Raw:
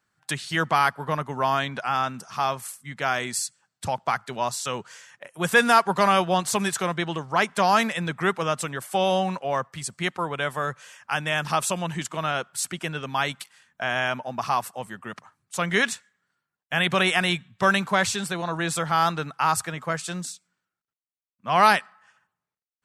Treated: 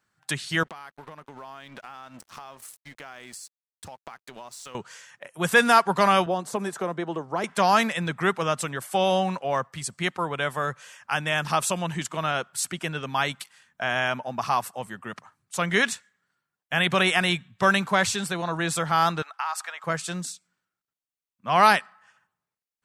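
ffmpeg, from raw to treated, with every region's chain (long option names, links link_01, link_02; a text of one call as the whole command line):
ffmpeg -i in.wav -filter_complex "[0:a]asettb=1/sr,asplit=3[link_01][link_02][link_03];[link_01]atrim=end=0.634[link_04];[link_02]atrim=start=0.63:end=4.75,asetpts=PTS-STARTPTS,afade=type=in:duration=0.004:curve=qsin,afade=type=out:start_time=4.116:duration=0.004:curve=qsin,aeval=exprs='sgn(val(0))*max(abs(val(0))-0.0075,0)':channel_layout=same,acompressor=threshold=-37dB:ratio=12:attack=3.2:release=140:knee=1:detection=peak,equalizer=frequency=130:width=2.4:gain=-5.5[link_05];[link_03]atrim=start=4.746[link_06];[link_04][link_05]acrossfade=duration=0.004:curve1=hsin:curve2=qsin[link_07];[link_07][link_06]acrossfade=duration=0.004:curve1=qsin:curve2=hsin,asettb=1/sr,asplit=3[link_08][link_09][link_10];[link_08]atrim=end=6.264[link_11];[link_09]atrim=start=6.26:end=7.44,asetpts=PTS-STARTPTS,afade=type=in:duration=0.004:curve=qsin,afade=type=out:start_time=1.176:duration=0.004:curve=qsin,highpass=260,acrossover=split=430|2200|4400[link_12][link_13][link_14][link_15];[link_12]acompressor=threshold=-39dB:ratio=3[link_16];[link_13]acompressor=threshold=-27dB:ratio=3[link_17];[link_14]acompressor=threshold=-48dB:ratio=3[link_18];[link_15]acompressor=threshold=-30dB:ratio=3[link_19];[link_16][link_17][link_18][link_19]amix=inputs=4:normalize=0,tiltshelf=frequency=800:gain=8.5[link_20];[link_10]atrim=start=7.436[link_21];[link_11][link_20]acrossfade=duration=0.004:curve1=hsin:curve2=qsin[link_22];[link_22][link_21]acrossfade=duration=0.004:curve1=qsin:curve2=hsin,asettb=1/sr,asplit=3[link_23][link_24][link_25];[link_23]atrim=end=19.224[link_26];[link_24]atrim=start=19.22:end=19.84,asetpts=PTS-STARTPTS,afade=type=in:duration=0.004:curve=qsin,afade=type=out:start_time=0.616:duration=0.004:curve=qsin,highpass=frequency=730:width=0.5412,highpass=frequency=730:width=1.3066,equalizer=frequency=11000:width=0.54:gain=-8,acompressor=threshold=-24dB:ratio=6:attack=3.2:release=140:knee=1:detection=peak[link_27];[link_25]atrim=start=19.836[link_28];[link_26][link_27]acrossfade=duration=0.004:curve1=hsin:curve2=qsin[link_29];[link_29][link_28]acrossfade=duration=0.004:curve1=qsin:curve2=hsin" out.wav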